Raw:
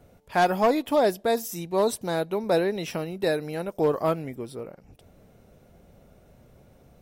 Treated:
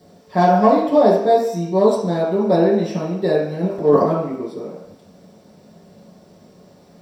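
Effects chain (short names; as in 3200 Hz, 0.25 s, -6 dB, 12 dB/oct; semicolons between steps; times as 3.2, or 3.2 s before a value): 3.51–4.11 transient shaper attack -9 dB, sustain +12 dB; in parallel at -5 dB: requantised 8-bit, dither triangular; on the sum: reverb RT60 0.75 s, pre-delay 3 ms, DRR -6.5 dB; gain -15.5 dB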